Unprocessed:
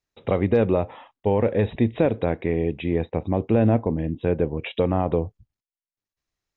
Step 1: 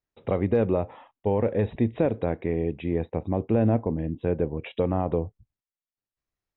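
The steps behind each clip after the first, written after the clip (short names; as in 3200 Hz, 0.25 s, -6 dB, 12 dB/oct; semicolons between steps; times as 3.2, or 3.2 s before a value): high shelf 3000 Hz -10 dB; gain -3 dB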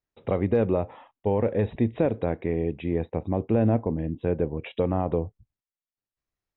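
nothing audible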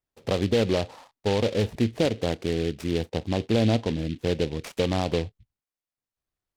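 noise-modulated delay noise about 2800 Hz, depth 0.081 ms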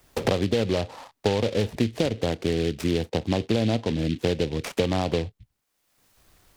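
three-band squash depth 100%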